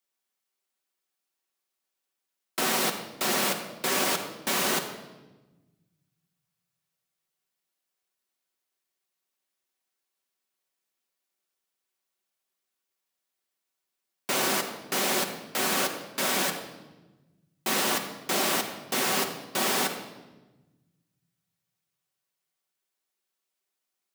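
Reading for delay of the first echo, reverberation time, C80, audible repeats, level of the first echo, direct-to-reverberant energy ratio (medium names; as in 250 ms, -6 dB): no echo, 1.1 s, 9.0 dB, no echo, no echo, 3.0 dB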